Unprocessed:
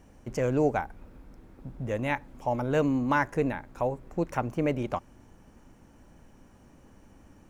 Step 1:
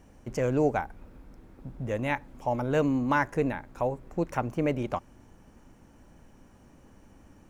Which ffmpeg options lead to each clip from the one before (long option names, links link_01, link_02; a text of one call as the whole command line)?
ffmpeg -i in.wav -af anull out.wav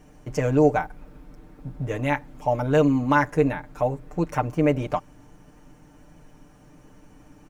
ffmpeg -i in.wav -af "aecho=1:1:6.7:0.76,volume=2.5dB" out.wav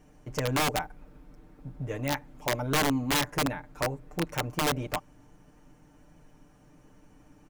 ffmpeg -i in.wav -af "aeval=exprs='(mod(5.01*val(0)+1,2)-1)/5.01':channel_layout=same,volume=-6dB" out.wav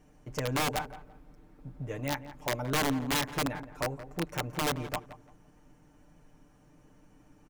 ffmpeg -i in.wav -filter_complex "[0:a]asplit=2[link_01][link_02];[link_02]adelay=170,lowpass=frequency=1700:poles=1,volume=-13dB,asplit=2[link_03][link_04];[link_04]adelay=170,lowpass=frequency=1700:poles=1,volume=0.28,asplit=2[link_05][link_06];[link_06]adelay=170,lowpass=frequency=1700:poles=1,volume=0.28[link_07];[link_01][link_03][link_05][link_07]amix=inputs=4:normalize=0,volume=-3dB" out.wav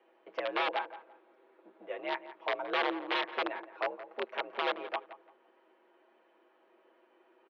ffmpeg -i in.wav -af "highpass=frequency=320:width_type=q:width=0.5412,highpass=frequency=320:width_type=q:width=1.307,lowpass=frequency=3600:width_type=q:width=0.5176,lowpass=frequency=3600:width_type=q:width=0.7071,lowpass=frequency=3600:width_type=q:width=1.932,afreqshift=61" out.wav